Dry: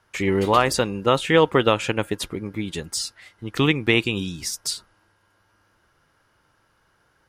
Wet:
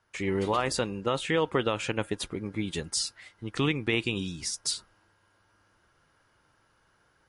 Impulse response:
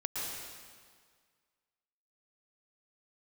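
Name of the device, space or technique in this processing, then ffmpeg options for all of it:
low-bitrate web radio: -af "dynaudnorm=framelen=280:gausssize=3:maxgain=5dB,alimiter=limit=-7.5dB:level=0:latency=1:release=44,volume=-7.5dB" -ar 32000 -c:a libmp3lame -b:a 48k

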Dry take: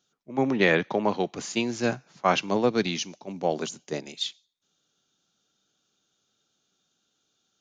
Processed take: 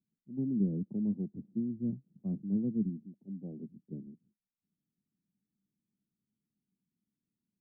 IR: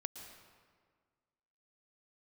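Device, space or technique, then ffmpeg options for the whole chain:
the neighbour's flat through the wall: -filter_complex "[0:a]asettb=1/sr,asplit=3[link_01][link_02][link_03];[link_01]atrim=end=2.894[link_04];[link_02]atrim=start=2.89:end=3.69,asetpts=PTS-STARTPTS,afade=type=in:duration=0.004:curve=qsin,afade=type=out:start_time=0.796:duration=0.004:curve=qsin,lowshelf=frequency=150:gain=-8[link_05];[link_03]atrim=start=3.686[link_06];[link_04][link_05]acrossfade=duration=0.004:curve1=hsin:curve2=qsin[link_07];[link_07][link_06]acrossfade=duration=0.004:curve1=qsin:curve2=hsin,lowpass=frequency=270:width=0.5412,lowpass=frequency=270:width=1.3066,equalizer=frequency=200:width_type=o:width=0.43:gain=7,volume=-5.5dB"

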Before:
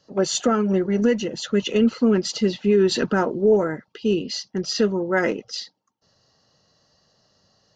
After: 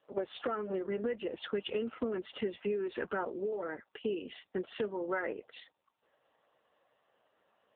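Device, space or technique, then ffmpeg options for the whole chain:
voicemail: -filter_complex "[0:a]asplit=3[link_01][link_02][link_03];[link_01]afade=type=out:start_time=2.45:duration=0.02[link_04];[link_02]highshelf=frequency=5800:gain=-3.5,afade=type=in:start_time=2.45:duration=0.02,afade=type=out:start_time=3.27:duration=0.02[link_05];[link_03]afade=type=in:start_time=3.27:duration=0.02[link_06];[link_04][link_05][link_06]amix=inputs=3:normalize=0,highpass=430,lowpass=2600,acompressor=threshold=-30dB:ratio=10" -ar 8000 -c:a libopencore_amrnb -b:a 5900

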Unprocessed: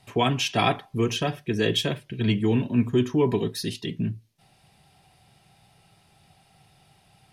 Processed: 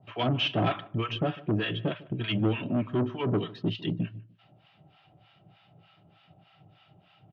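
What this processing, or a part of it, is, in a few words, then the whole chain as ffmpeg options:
guitar amplifier with harmonic tremolo: -filter_complex "[0:a]acrossover=split=790[link_01][link_02];[link_01]aeval=exprs='val(0)*(1-1/2+1/2*cos(2*PI*3.3*n/s))':channel_layout=same[link_03];[link_02]aeval=exprs='val(0)*(1-1/2-1/2*cos(2*PI*3.3*n/s))':channel_layout=same[link_04];[link_03][link_04]amix=inputs=2:normalize=0,asoftclip=type=tanh:threshold=-26.5dB,highpass=97,equalizer=frequency=110:width_type=q:width=4:gain=10,equalizer=frequency=170:width_type=q:width=4:gain=7,equalizer=frequency=310:width_type=q:width=4:gain=9,equalizer=frequency=610:width_type=q:width=4:gain=9,equalizer=frequency=1300:width_type=q:width=4:gain=8,equalizer=frequency=3000:width_type=q:width=4:gain=8,lowpass=frequency=3600:width=0.5412,lowpass=frequency=3600:width=1.3066,asettb=1/sr,asplit=3[link_05][link_06][link_07];[link_05]atrim=end=1.364[link_08];[link_06]atrim=start=1.36:end=2.23,asetpts=PTS-STARTPTS,afade=type=in:duration=0.004:curve=qsin,afade=type=out:start_time=0.866:duration=0.004:curve=qsin,highshelf=frequency=3700:gain=-7[link_09];[link_07]atrim=start=2.226[link_10];[link_08][link_09]acrossfade=duration=0.004:curve1=hsin:curve2=qsin[link_11];[link_11][link_10]acrossfade=duration=0.004:curve1=qsin:curve2=hsin,asplit=2[link_12][link_13];[link_13]adelay=150,lowpass=frequency=1700:poles=1,volume=-20dB,asplit=2[link_14][link_15];[link_15]adelay=150,lowpass=frequency=1700:poles=1,volume=0.29[link_16];[link_12][link_14][link_16]amix=inputs=3:normalize=0"

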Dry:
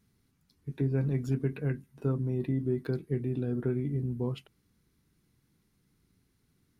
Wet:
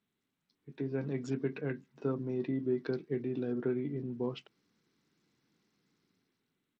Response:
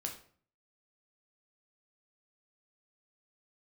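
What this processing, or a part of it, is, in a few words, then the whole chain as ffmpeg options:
Bluetooth headset: -af "highpass=240,dynaudnorm=framelen=230:gausssize=7:maxgain=9dB,aresample=16000,aresample=44100,volume=-8.5dB" -ar 32000 -c:a sbc -b:a 64k

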